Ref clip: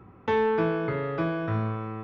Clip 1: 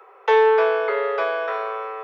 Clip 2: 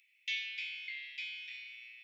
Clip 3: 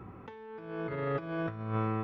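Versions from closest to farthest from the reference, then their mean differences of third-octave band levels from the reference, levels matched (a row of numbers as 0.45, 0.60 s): 3, 1, 2; 6.0, 9.0, 24.0 dB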